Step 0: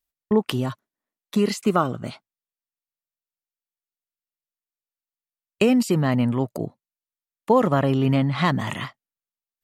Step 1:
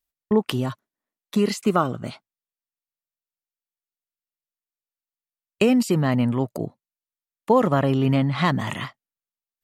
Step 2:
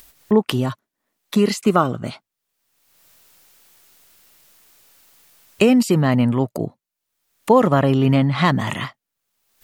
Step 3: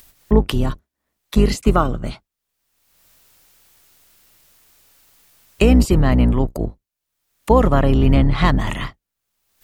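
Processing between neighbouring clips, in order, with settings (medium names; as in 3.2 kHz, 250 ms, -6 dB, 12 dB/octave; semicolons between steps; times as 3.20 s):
no audible change
upward compressor, threshold -30 dBFS; trim +4 dB
octave divider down 2 oct, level +3 dB; trim -1 dB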